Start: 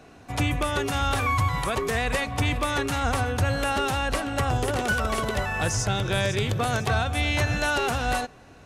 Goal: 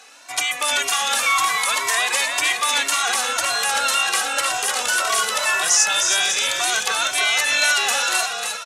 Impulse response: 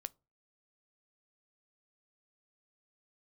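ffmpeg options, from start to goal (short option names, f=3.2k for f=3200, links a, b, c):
-filter_complex "[0:a]highpass=940,equalizer=f=7.4k:w=0.48:g=11,asplit=2[a][b];[b]alimiter=limit=-20dB:level=0:latency=1,volume=-1dB[c];[a][c]amix=inputs=2:normalize=0,asplit=6[d][e][f][g][h][i];[e]adelay=308,afreqshift=-41,volume=-4.5dB[j];[f]adelay=616,afreqshift=-82,volume=-11.8dB[k];[g]adelay=924,afreqshift=-123,volume=-19.2dB[l];[h]adelay=1232,afreqshift=-164,volume=-26.5dB[m];[i]adelay=1540,afreqshift=-205,volume=-33.8dB[n];[d][j][k][l][m][n]amix=inputs=6:normalize=0,asplit=2[o][p];[p]adelay=2,afreqshift=1.9[q];[o][q]amix=inputs=2:normalize=1,volume=4dB"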